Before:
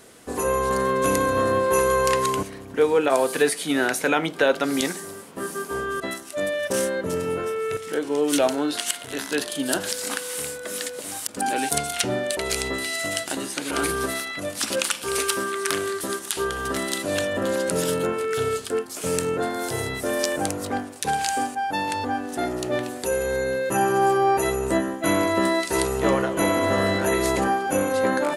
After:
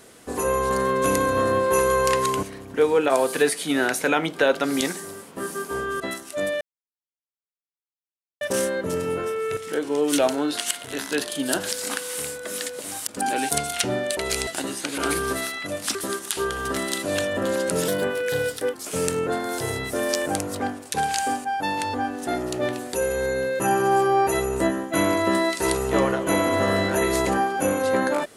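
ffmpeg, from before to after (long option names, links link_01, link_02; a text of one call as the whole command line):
ffmpeg -i in.wav -filter_complex "[0:a]asplit=6[link_01][link_02][link_03][link_04][link_05][link_06];[link_01]atrim=end=6.61,asetpts=PTS-STARTPTS,afade=type=out:start_time=6.606:duration=0.004:curve=hsin,apad=pad_dur=1.8[link_07];[link_02]atrim=start=6.61:end=12.672,asetpts=PTS-STARTPTS,afade=type=in:duration=0.004:curve=hsin[link_08];[link_03]atrim=start=13.198:end=14.682[link_09];[link_04]atrim=start=15.948:end=17.884[link_10];[link_05]atrim=start=17.88:end=18.84,asetpts=PTS-STARTPTS,asetrate=49392,aresample=44100[link_11];[link_06]atrim=start=18.836[link_12];[link_07][link_08]concat=n=2:v=0:a=1[link_13];[link_13][link_09]acrossfade=duration=0.004:curve1=hsin:curve2=hsin[link_14];[link_14][link_10]acrossfade=duration=0.004:curve1=hsin:curve2=hsin[link_15];[link_15][link_11]acrossfade=duration=0.004:curve1=hsin:curve2=hsin[link_16];[link_16][link_12]acrossfade=duration=0.004:curve1=hsin:curve2=hsin" out.wav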